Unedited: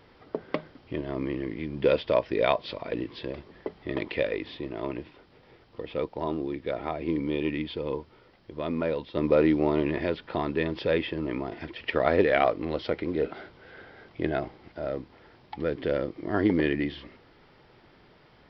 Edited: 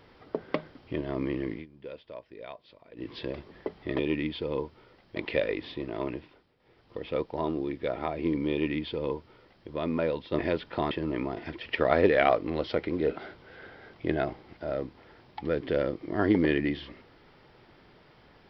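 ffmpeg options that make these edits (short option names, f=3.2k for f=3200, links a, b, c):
-filter_complex "[0:a]asplit=9[a][b][c][d][e][f][g][h][i];[a]atrim=end=1.66,asetpts=PTS-STARTPTS,afade=t=out:st=1.53:d=0.13:silence=0.105925[j];[b]atrim=start=1.66:end=2.96,asetpts=PTS-STARTPTS,volume=-19.5dB[k];[c]atrim=start=2.96:end=3.992,asetpts=PTS-STARTPTS,afade=t=in:d=0.13:silence=0.105925[l];[d]atrim=start=7.338:end=8.512[m];[e]atrim=start=3.988:end=5.37,asetpts=PTS-STARTPTS,afade=t=out:st=0.952:d=0.43:silence=0.177828[n];[f]atrim=start=5.37:end=5.4,asetpts=PTS-STARTPTS,volume=-15dB[o];[g]atrim=start=5.4:end=9.222,asetpts=PTS-STARTPTS,afade=t=in:d=0.43:silence=0.177828[p];[h]atrim=start=9.958:end=10.482[q];[i]atrim=start=11.058[r];[j][k][l]concat=n=3:v=0:a=1[s];[s][m]acrossfade=d=0.004:c1=hsin:c2=hsin[t];[n][o][p]concat=n=3:v=0:a=1[u];[t][u]acrossfade=d=0.004:c1=hsin:c2=hsin[v];[v][q]acrossfade=d=0.004:c1=hsin:c2=hsin[w];[w][r]acrossfade=d=0.004:c1=hsin:c2=hsin"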